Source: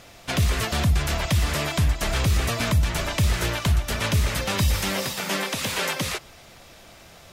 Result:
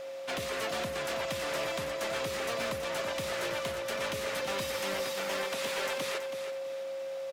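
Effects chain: high-pass 340 Hz 12 dB/octave; treble shelf 4.8 kHz -7 dB; in parallel at -1 dB: compression, threshold -42 dBFS, peak gain reduction 17 dB; on the sum: overload inside the chain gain 23.5 dB; whistle 540 Hz -31 dBFS; feedback delay 326 ms, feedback 29%, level -9 dB; trim -7 dB

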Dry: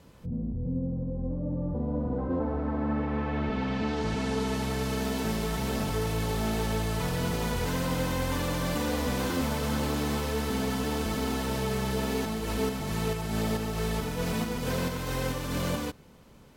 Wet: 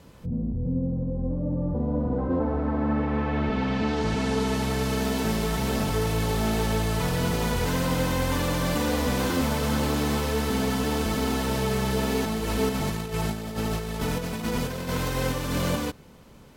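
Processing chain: 12.74–15.16 s: compressor with a negative ratio -32 dBFS, ratio -0.5; trim +4 dB

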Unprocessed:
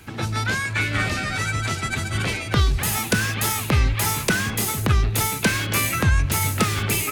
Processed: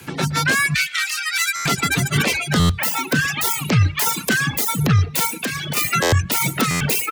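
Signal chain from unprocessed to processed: self-modulated delay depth 0.13 ms; treble shelf 5.2 kHz +4.5 dB; level rider gain up to 7 dB; reverb removal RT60 0.82 s; 0.74–1.64 s: Bessel high-pass 1.9 kHz, order 8; 2.71–3.28 s: peaking EQ 12 kHz -6.5 dB 1.9 oct; reverb removal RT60 1.3 s; peak limiter -12.5 dBFS, peak gain reduction 9 dB; frequency shift +41 Hz; speakerphone echo 120 ms, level -19 dB; 5.32–5.77 s: compression 2.5:1, threshold -29 dBFS, peak gain reduction 7 dB; buffer glitch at 1.55/2.59/6.02/6.70 s, samples 512; trim +5 dB

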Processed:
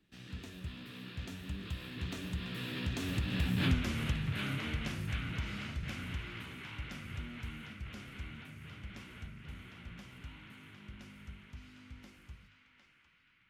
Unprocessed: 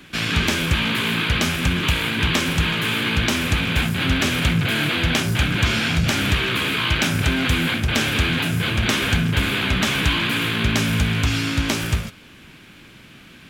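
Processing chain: Doppler pass-by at 3.69 s, 33 m/s, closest 2.8 m; bass shelf 260 Hz +12 dB; hum notches 50/100/150 Hz; compression 3:1, threshold -34 dBFS, peak gain reduction 19.5 dB; on a send: band-passed feedback delay 755 ms, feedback 67%, band-pass 2 kHz, level -5 dB; on the sum: trim +1 dB

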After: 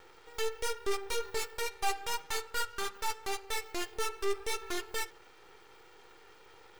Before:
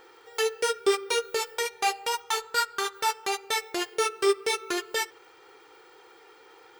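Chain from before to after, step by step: valve stage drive 24 dB, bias 0.5; 1.20–2.58 s: comb 5 ms, depth 39%; vibrato 0.49 Hz 7.3 cents; half-wave rectifier; trim +2.5 dB

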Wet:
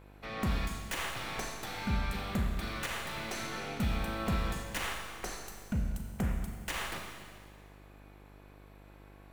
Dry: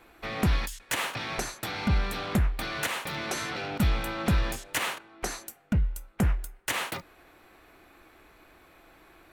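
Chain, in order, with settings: tracing distortion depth 0.057 ms; Schroeder reverb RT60 1.8 s, combs from 28 ms, DRR 2 dB; mains buzz 50 Hz, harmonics 21, -47 dBFS -5 dB/octave; trim -8 dB

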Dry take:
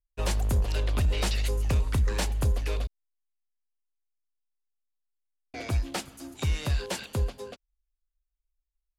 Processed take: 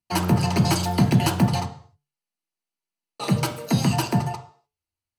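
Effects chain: de-hum 83.13 Hz, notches 12; reverberation RT60 0.85 s, pre-delay 3 ms, DRR 4 dB; speed mistake 45 rpm record played at 78 rpm

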